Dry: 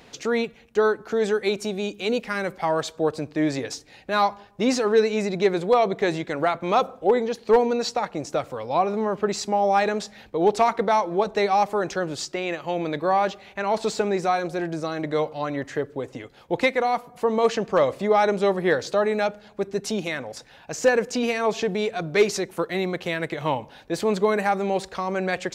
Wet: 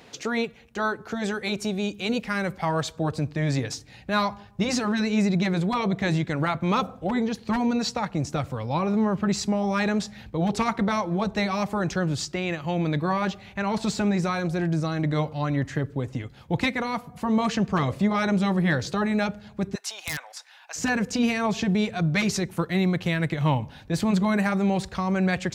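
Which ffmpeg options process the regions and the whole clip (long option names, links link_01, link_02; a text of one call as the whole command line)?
ffmpeg -i in.wav -filter_complex "[0:a]asettb=1/sr,asplit=3[link_01][link_02][link_03];[link_01]atrim=end=19.754[link_04];[link_02]atrim=start=19.75:end=20.76,asetpts=PTS-STARTPTS,afade=type=in:duration=0.004:curve=qsin,afade=type=out:start_time=1.006:duration=0.004:curve=qsin,highpass=frequency=790:width=0.5412,highpass=frequency=790:width=1.3066,aeval=exprs='(mod(10.6*val(0)+1,2)-1)/10.6':channel_layout=same[link_05];[link_03]atrim=start=20.756[link_06];[link_04][link_05]acrossfade=duration=0.004:curve1=hsin:curve2=qsin[link_07];[link_07][link_06]acrossfade=duration=0.004:curve1=qsin:curve2=hsin,afftfilt=real='re*lt(hypot(re,im),0.794)':imag='im*lt(hypot(re,im),0.794)':win_size=1024:overlap=0.75,highpass=66,asubboost=boost=7:cutoff=160" out.wav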